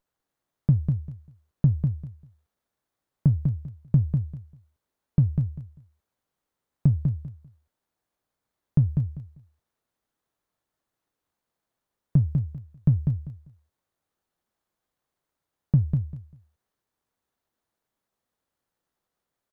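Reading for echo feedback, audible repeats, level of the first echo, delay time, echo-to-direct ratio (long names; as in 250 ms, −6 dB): 20%, 3, −5.0 dB, 197 ms, −5.0 dB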